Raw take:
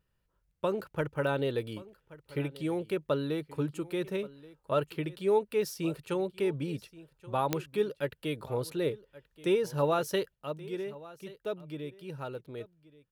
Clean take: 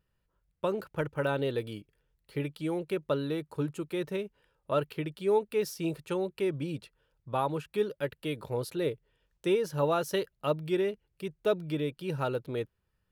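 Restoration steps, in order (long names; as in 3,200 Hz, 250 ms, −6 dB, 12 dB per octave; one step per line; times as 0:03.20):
click removal
echo removal 1,128 ms −19.5 dB
level 0 dB, from 0:10.34 +8 dB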